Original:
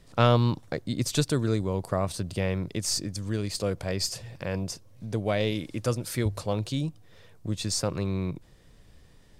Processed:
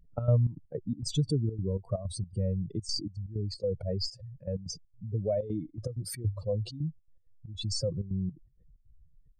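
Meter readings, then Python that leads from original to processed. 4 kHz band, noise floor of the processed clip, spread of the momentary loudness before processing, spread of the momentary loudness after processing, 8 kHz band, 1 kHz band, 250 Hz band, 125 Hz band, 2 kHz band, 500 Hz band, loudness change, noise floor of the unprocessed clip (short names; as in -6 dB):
-5.5 dB, -66 dBFS, 8 LU, 9 LU, -9.5 dB, -18.0 dB, -6.0 dB, -2.0 dB, under -20 dB, -5.0 dB, -4.0 dB, -55 dBFS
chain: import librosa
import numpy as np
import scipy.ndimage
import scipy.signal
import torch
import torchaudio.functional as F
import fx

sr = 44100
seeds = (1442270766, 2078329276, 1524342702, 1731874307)

y = fx.spec_expand(x, sr, power=2.9)
y = fx.step_gate(y, sr, bpm=161, pattern='xx.xx.x.xx.xxx', floor_db=-12.0, edge_ms=4.5)
y = y * 10.0 ** (-1.5 / 20.0)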